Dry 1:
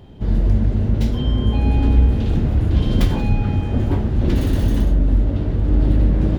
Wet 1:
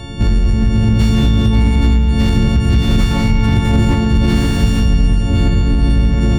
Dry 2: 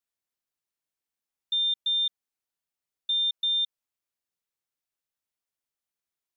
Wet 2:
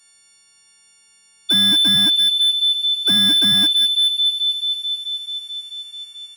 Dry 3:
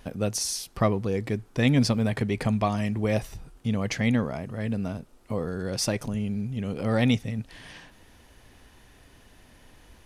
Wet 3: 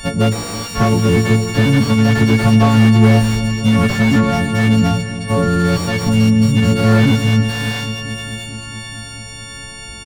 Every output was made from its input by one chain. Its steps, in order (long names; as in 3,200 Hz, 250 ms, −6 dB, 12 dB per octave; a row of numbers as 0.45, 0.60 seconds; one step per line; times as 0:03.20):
every partial snapped to a pitch grid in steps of 4 semitones
parametric band 550 Hz −6 dB 1.8 octaves
downward compressor 16 to 1, threshold −24 dBFS
soft clipping −22 dBFS
on a send: delay that swaps between a low-pass and a high-pass 109 ms, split 990 Hz, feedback 89%, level −12 dB
on the sum: downsampling to 22,050 Hz
slew-rate limiting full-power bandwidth 26 Hz
loudness normalisation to −14 LKFS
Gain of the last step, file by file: +17.0, +28.5, +18.0 decibels